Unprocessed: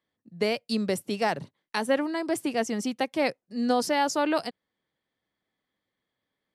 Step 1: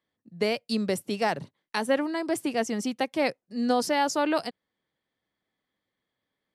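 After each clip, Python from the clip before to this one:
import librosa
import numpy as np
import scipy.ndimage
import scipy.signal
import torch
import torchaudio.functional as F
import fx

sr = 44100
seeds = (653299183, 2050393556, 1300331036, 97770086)

y = x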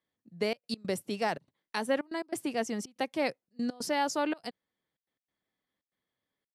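y = fx.step_gate(x, sr, bpm=142, pattern='xxxxx.x.xxxxx.', floor_db=-24.0, edge_ms=4.5)
y = y * 10.0 ** (-4.5 / 20.0)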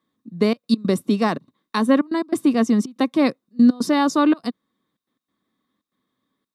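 y = fx.small_body(x, sr, hz=(240.0, 1100.0, 3700.0), ring_ms=20, db=15)
y = y * 10.0 ** (4.5 / 20.0)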